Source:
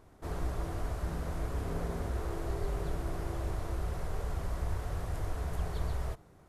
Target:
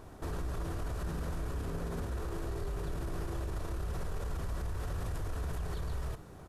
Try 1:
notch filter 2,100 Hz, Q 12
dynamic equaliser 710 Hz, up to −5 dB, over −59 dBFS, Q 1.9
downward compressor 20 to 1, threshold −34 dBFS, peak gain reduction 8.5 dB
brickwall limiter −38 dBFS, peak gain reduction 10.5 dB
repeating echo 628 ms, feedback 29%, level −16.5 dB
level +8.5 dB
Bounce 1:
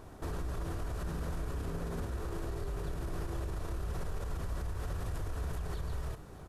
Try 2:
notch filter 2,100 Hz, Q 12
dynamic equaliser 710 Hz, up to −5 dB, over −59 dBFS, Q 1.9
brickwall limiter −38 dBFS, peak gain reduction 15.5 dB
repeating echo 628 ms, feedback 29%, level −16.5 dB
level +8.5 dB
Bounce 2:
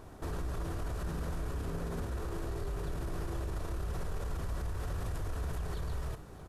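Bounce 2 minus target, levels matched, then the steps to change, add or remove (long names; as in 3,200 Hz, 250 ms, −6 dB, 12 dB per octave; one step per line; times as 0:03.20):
echo-to-direct +7.5 dB
change: repeating echo 628 ms, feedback 29%, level −24 dB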